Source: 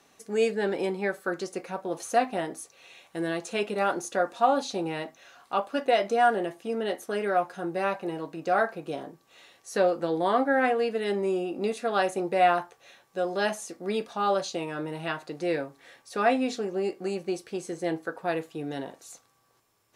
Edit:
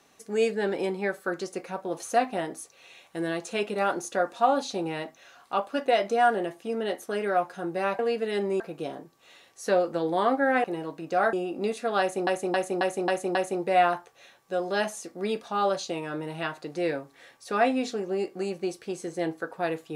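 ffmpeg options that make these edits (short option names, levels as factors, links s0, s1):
-filter_complex "[0:a]asplit=10[s0][s1][s2][s3][s4][s5][s6][s7][s8][s9];[s0]atrim=end=7.992[s10];[s1]atrim=start=10.718:end=11.332[s11];[s2]atrim=start=8.678:end=10.722[s12];[s3]atrim=start=7.988:end=8.682[s13];[s4]atrim=start=11.328:end=12.272[s14];[s5]atrim=start=11.998:end=12.272[s15];[s6]atrim=start=11.998:end=12.272[s16];[s7]atrim=start=11.998:end=12.272[s17];[s8]atrim=start=11.998:end=12.272[s18];[s9]atrim=start=11.998[s19];[s10][s11]acrossfade=d=0.004:c1=hsin:c2=hsin[s20];[s20][s12]acrossfade=d=0.004:c1=hsin:c2=hsin[s21];[s21][s13]acrossfade=d=0.004:c1=hsin:c2=hsin[s22];[s22][s14]acrossfade=d=0.004:c1=hsin:c2=hsin[s23];[s23][s15]acrossfade=d=0.004:c1=hsin:c2=hsin[s24];[s24][s16]acrossfade=d=0.004:c1=hsin:c2=hsin[s25];[s25][s17]acrossfade=d=0.004:c1=hsin:c2=hsin[s26];[s26][s18]acrossfade=d=0.004:c1=hsin:c2=hsin[s27];[s27][s19]acrossfade=d=0.004:c1=hsin:c2=hsin"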